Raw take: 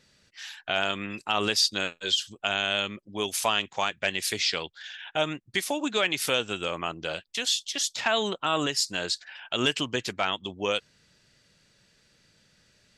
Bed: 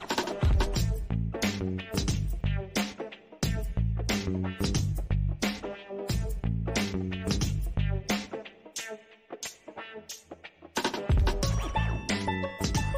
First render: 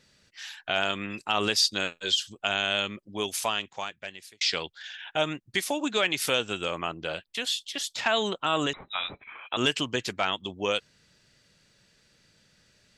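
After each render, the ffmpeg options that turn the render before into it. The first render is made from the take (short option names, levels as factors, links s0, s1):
-filter_complex "[0:a]asettb=1/sr,asplit=3[s0][s1][s2];[s0]atrim=end=6.864[s3];[s1]atrim=start=6.86:end=7.96,asetpts=PTS-STARTPTS,afade=t=in:d=0.004:c=qsin,afade=t=out:st=1.096:d=0.004:c=qsin,equalizer=f=6100:t=o:w=0.91:g=-8[s4];[s2]atrim=start=7.956[s5];[s3][s4]acrossfade=d=0.004:c1=hsin:c2=qsin[s6];[s6][s5]acrossfade=d=0.004:c1=qsin:c2=hsin,asettb=1/sr,asplit=3[s7][s8][s9];[s7]atrim=end=8.734[s10];[s8]atrim=start=8.73:end=9.57,asetpts=PTS-STARTPTS,afade=t=in:d=0.004:c=qsin,afade=t=out:st=0.836:d=0.004:c=qsin,lowpass=f=3400:t=q:w=0.5098,lowpass=f=3400:t=q:w=0.6013,lowpass=f=3400:t=q:w=0.9,lowpass=f=3400:t=q:w=2.563,afreqshift=-4000[s11];[s9]atrim=start=9.566[s12];[s10][s11]acrossfade=d=0.004:c1=hsin:c2=qsin[s13];[s13][s12]acrossfade=d=0.004:c1=qsin:c2=hsin,asplit=2[s14][s15];[s14]atrim=end=4.41,asetpts=PTS-STARTPTS,afade=t=out:st=3.11:d=1.3[s16];[s15]atrim=start=4.41,asetpts=PTS-STARTPTS,afade=t=in:d=0.004:c=hsin[s17];[s16][s17]concat=n=2:v=0:a=1"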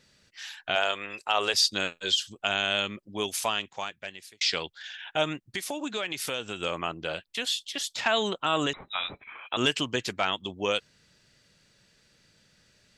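-filter_complex "[0:a]asettb=1/sr,asplit=3[s0][s1][s2];[s0]atrim=end=0.754[s3];[s1]atrim=start=0.75:end=1.54,asetpts=PTS-STARTPTS,afade=t=in:d=0.004:c=qsin,afade=t=out:st=0.786:d=0.004:c=qsin,lowshelf=f=360:t=q:w=1.5:g=-11[s4];[s2]atrim=start=1.536[s5];[s3][s4]acrossfade=d=0.004:c1=hsin:c2=qsin[s6];[s6][s5]acrossfade=d=0.004:c1=qsin:c2=hsin,asettb=1/sr,asplit=3[s7][s8][s9];[s7]atrim=end=5.434[s10];[s8]atrim=start=5.43:end=6.63,asetpts=PTS-STARTPTS,afade=t=in:d=0.004:c=qsin,afade=t=out:st=1.196:d=0.004:c=qsin,acompressor=threshold=0.0251:ratio=2:attack=3.2:release=140:knee=1:detection=peak[s11];[s9]atrim=start=6.626[s12];[s10][s11]acrossfade=d=0.004:c1=hsin:c2=qsin[s13];[s13][s12]acrossfade=d=0.004:c1=qsin:c2=hsin"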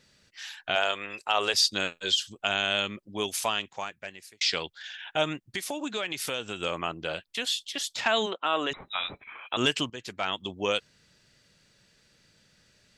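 -filter_complex "[0:a]asettb=1/sr,asplit=3[s0][s1][s2];[s0]atrim=end=3.774[s3];[s1]atrim=start=3.77:end=4.37,asetpts=PTS-STARTPTS,afade=t=in:d=0.004:c=qsin,afade=t=out:st=0.596:d=0.004:c=qsin,equalizer=f=3400:t=o:w=0.49:g=-7[s4];[s2]atrim=start=4.366[s5];[s3][s4]acrossfade=d=0.004:c1=hsin:c2=qsin[s6];[s6][s5]acrossfade=d=0.004:c1=qsin:c2=hsin,asplit=3[s7][s8][s9];[s7]afade=t=out:st=8.25:d=0.02[s10];[s8]highpass=340,lowpass=3600,afade=t=in:st=8.25:d=0.02,afade=t=out:st=8.7:d=0.02[s11];[s9]afade=t=in:st=8.7:d=0.02[s12];[s10][s11][s12]amix=inputs=3:normalize=0,asplit=2[s13][s14];[s13]atrim=end=9.9,asetpts=PTS-STARTPTS,afade=t=out:st=9.896:d=0.004:c=hsin:silence=0.16788[s15];[s14]atrim=start=9.9,asetpts=PTS-STARTPTS,afade=t=in:d=0.54:silence=0.16788[s16];[s15][s16]concat=n=2:v=0:a=1"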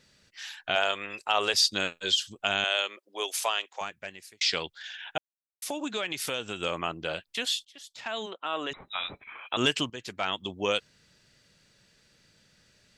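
-filter_complex "[0:a]asettb=1/sr,asplit=3[s0][s1][s2];[s0]atrim=end=2.644[s3];[s1]atrim=start=2.64:end=3.81,asetpts=PTS-STARTPTS,afade=t=in:d=0.004:c=qsin,afade=t=out:st=1.166:d=0.004:c=qsin,highpass=f=420:w=0.5412,highpass=f=420:w=1.3066[s4];[s2]atrim=start=3.806[s5];[s3][s4]acrossfade=d=0.004:c1=hsin:c2=qsin[s6];[s6][s5]acrossfade=d=0.004:c1=qsin:c2=hsin,asplit=4[s7][s8][s9][s10];[s7]atrim=end=5.18,asetpts=PTS-STARTPTS,afade=t=out:st=5.176:d=0.004:c=hsin[s11];[s8]atrim=start=5.18:end=5.62,asetpts=PTS-STARTPTS,volume=0[s12];[s9]atrim=start=5.62:end=7.65,asetpts=PTS-STARTPTS,afade=t=in:d=0.004:c=hsin,afade=t=out:st=2.026:d=0.004:c=hsin:silence=0.0841395[s13];[s10]atrim=start=7.65,asetpts=PTS-STARTPTS,afade=t=in:d=1.7:silence=0.0841395[s14];[s11][s12][s13][s14]concat=n=4:v=0:a=1"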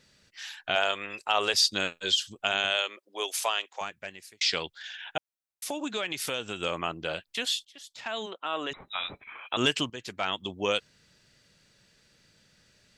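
-filter_complex "[0:a]asettb=1/sr,asplit=3[s0][s1][s2];[s0]atrim=end=2.464[s3];[s1]atrim=start=2.46:end=2.9,asetpts=PTS-STARTPTS,afade=t=in:d=0.004:c=qsin,afade=t=out:st=0.436:d=0.004:c=qsin,bandreject=f=50:t=h:w=6,bandreject=f=100:t=h:w=6,bandreject=f=150:t=h:w=6,bandreject=f=200:t=h:w=6,bandreject=f=250:t=h:w=6,bandreject=f=300:t=h:w=6[s4];[s2]atrim=start=2.896[s5];[s3][s4]acrossfade=d=0.004:c1=hsin:c2=qsin[s6];[s6][s5]acrossfade=d=0.004:c1=qsin:c2=hsin"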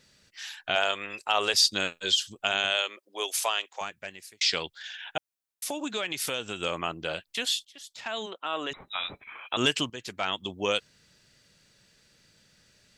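-af "highshelf=f=5900:g=4"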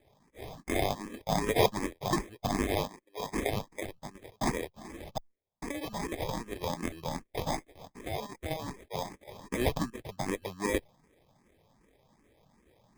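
-filter_complex "[0:a]acrusher=samples=31:mix=1:aa=0.000001,asplit=2[s0][s1];[s1]afreqshift=2.6[s2];[s0][s2]amix=inputs=2:normalize=1"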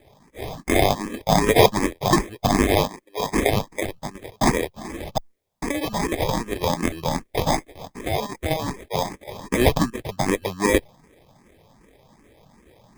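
-af "volume=3.76,alimiter=limit=0.891:level=0:latency=1"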